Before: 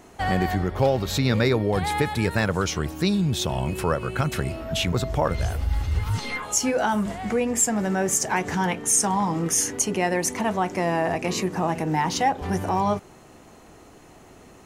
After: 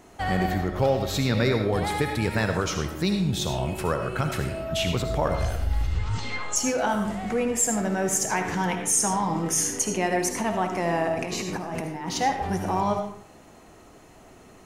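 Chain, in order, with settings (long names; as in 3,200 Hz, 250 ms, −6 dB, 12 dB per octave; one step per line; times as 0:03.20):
0:05.87–0:06.56: elliptic low-pass filter 7,900 Hz, stop band 50 dB
0:11.08–0:12.08: compressor whose output falls as the input rises −30 dBFS, ratio −1
on a send: convolution reverb RT60 0.55 s, pre-delay 35 ms, DRR 5 dB
on the sum: level −2.5 dB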